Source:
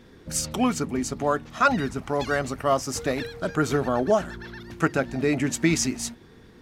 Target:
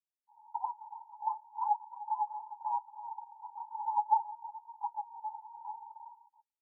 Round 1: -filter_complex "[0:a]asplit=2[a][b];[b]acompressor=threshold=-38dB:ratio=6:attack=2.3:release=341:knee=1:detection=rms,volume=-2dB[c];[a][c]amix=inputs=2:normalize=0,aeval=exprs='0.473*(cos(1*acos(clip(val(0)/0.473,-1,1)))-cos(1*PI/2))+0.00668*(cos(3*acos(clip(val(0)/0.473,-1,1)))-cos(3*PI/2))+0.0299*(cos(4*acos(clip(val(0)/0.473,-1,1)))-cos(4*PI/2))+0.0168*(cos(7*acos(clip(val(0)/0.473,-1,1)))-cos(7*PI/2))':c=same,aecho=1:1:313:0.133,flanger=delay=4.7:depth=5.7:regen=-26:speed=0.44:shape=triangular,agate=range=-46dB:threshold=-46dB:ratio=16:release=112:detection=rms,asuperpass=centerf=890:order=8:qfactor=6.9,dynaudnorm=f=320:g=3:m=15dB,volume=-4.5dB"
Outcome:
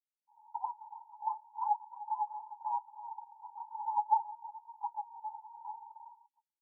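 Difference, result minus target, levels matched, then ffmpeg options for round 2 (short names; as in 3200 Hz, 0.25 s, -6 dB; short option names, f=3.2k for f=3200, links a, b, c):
compressor: peak gain reduction +9 dB
-filter_complex "[0:a]asplit=2[a][b];[b]acompressor=threshold=-27.5dB:ratio=6:attack=2.3:release=341:knee=1:detection=rms,volume=-2dB[c];[a][c]amix=inputs=2:normalize=0,aeval=exprs='0.473*(cos(1*acos(clip(val(0)/0.473,-1,1)))-cos(1*PI/2))+0.00668*(cos(3*acos(clip(val(0)/0.473,-1,1)))-cos(3*PI/2))+0.0299*(cos(4*acos(clip(val(0)/0.473,-1,1)))-cos(4*PI/2))+0.0168*(cos(7*acos(clip(val(0)/0.473,-1,1)))-cos(7*PI/2))':c=same,aecho=1:1:313:0.133,flanger=delay=4.7:depth=5.7:regen=-26:speed=0.44:shape=triangular,agate=range=-46dB:threshold=-46dB:ratio=16:release=112:detection=rms,asuperpass=centerf=890:order=8:qfactor=6.9,dynaudnorm=f=320:g=3:m=15dB,volume=-4.5dB"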